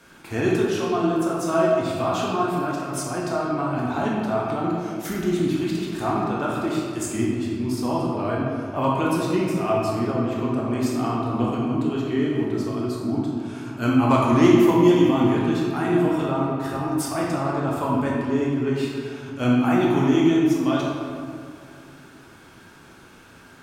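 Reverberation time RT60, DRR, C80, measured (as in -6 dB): 2.3 s, -4.5 dB, 1.0 dB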